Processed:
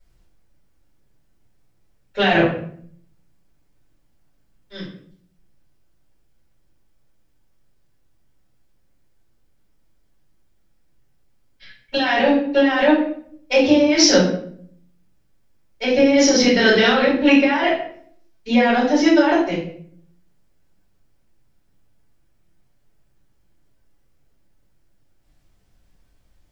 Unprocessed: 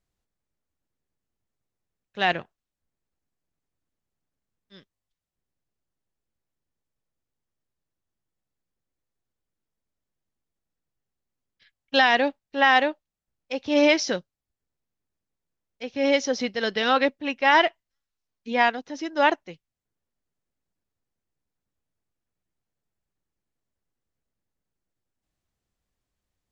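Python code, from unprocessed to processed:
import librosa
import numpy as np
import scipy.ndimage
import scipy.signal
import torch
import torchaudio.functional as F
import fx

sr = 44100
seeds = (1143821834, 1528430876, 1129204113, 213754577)

y = fx.over_compress(x, sr, threshold_db=-27.0, ratio=-1.0)
y = fx.room_shoebox(y, sr, seeds[0], volume_m3=87.0, walls='mixed', distance_m=4.4)
y = y * 10.0 ** (-4.0 / 20.0)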